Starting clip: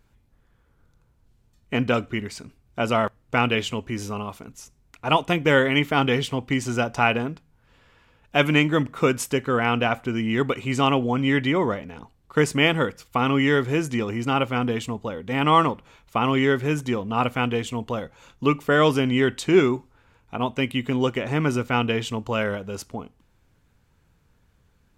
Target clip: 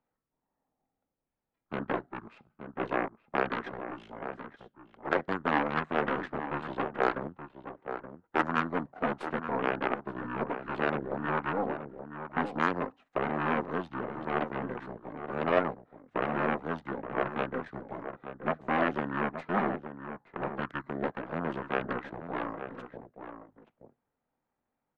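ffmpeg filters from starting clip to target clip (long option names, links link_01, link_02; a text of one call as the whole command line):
ffmpeg -i in.wav -filter_complex "[0:a]aeval=exprs='0.668*(cos(1*acos(clip(val(0)/0.668,-1,1)))-cos(1*PI/2))+0.168*(cos(3*acos(clip(val(0)/0.668,-1,1)))-cos(3*PI/2))+0.0841*(cos(6*acos(clip(val(0)/0.668,-1,1)))-cos(6*PI/2))+0.00473*(cos(7*acos(clip(val(0)/0.668,-1,1)))-cos(7*PI/2))+0.119*(cos(8*acos(clip(val(0)/0.668,-1,1)))-cos(8*PI/2))':channel_layout=same,asplit=2[link_01][link_02];[link_02]alimiter=limit=-14dB:level=0:latency=1:release=67,volume=0.5dB[link_03];[link_01][link_03]amix=inputs=2:normalize=0,acrossover=split=300 4600:gain=0.0708 1 0.0794[link_04][link_05][link_06];[link_04][link_05][link_06]amix=inputs=3:normalize=0,acrossover=split=700[link_07][link_08];[link_07]asoftclip=type=tanh:threshold=-27.5dB[link_09];[link_09][link_08]amix=inputs=2:normalize=0,asetrate=24046,aresample=44100,atempo=1.83401,asplit=2[link_10][link_11];[link_11]adelay=874.6,volume=-9dB,highshelf=frequency=4000:gain=-19.7[link_12];[link_10][link_12]amix=inputs=2:normalize=0,volume=-4.5dB" out.wav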